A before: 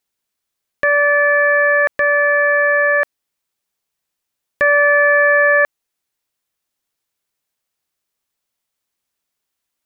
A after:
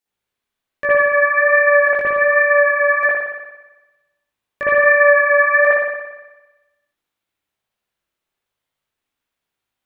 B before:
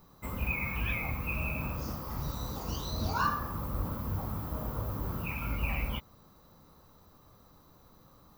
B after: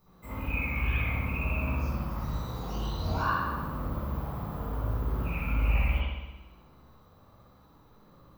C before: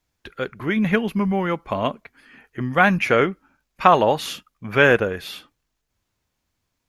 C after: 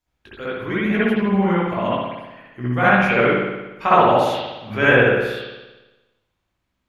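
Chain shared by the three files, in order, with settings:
chorus effect 1.2 Hz, delay 15.5 ms, depth 4.5 ms
spring reverb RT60 1.1 s, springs 57 ms, chirp 30 ms, DRR −8.5 dB
level −4 dB

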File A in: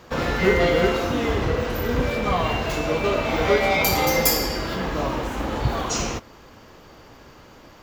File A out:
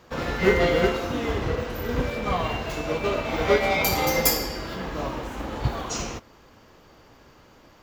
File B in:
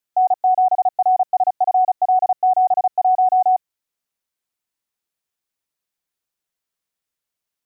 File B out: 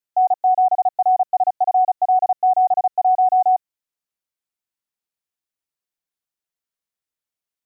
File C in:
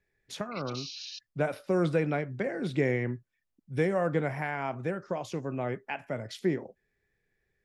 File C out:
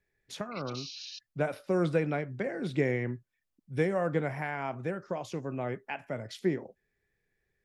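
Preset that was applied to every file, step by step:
expander for the loud parts 1.5 to 1, over −26 dBFS

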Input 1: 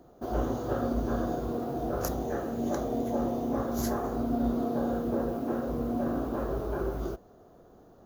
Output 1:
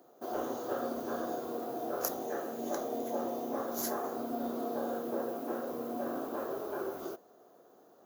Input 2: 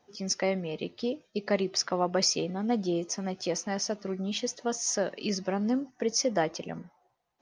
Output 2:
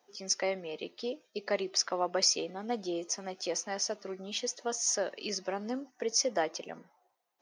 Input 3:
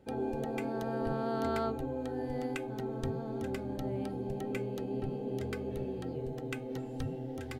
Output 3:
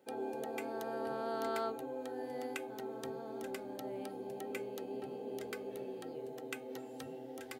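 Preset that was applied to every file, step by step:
high-pass filter 350 Hz 12 dB per octave
high-shelf EQ 9,300 Hz +10 dB
level −2.5 dB

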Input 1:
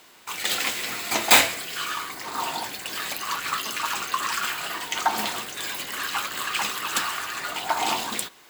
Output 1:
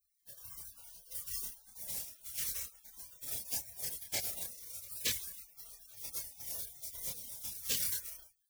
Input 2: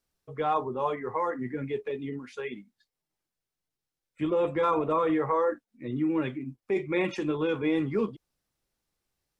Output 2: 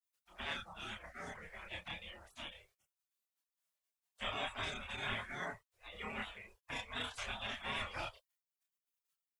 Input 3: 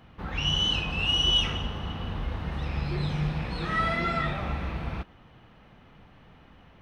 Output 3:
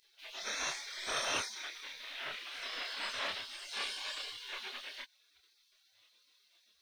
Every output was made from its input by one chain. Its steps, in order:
gate on every frequency bin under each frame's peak −30 dB weak
multi-voice chorus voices 4, 0.32 Hz, delay 28 ms, depth 1.1 ms
level +11.5 dB

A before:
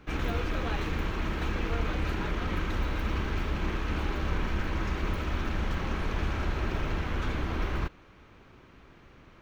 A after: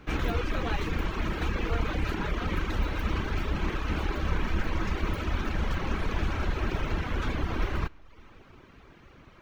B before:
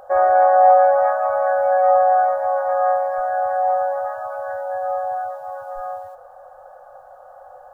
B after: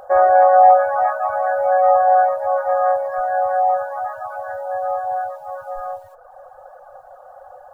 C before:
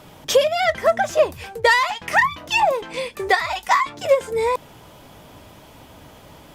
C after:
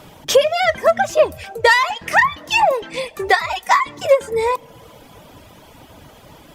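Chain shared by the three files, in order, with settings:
four-comb reverb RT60 2 s, combs from 27 ms, DRR 14.5 dB
reverb reduction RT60 0.73 s
level +3 dB

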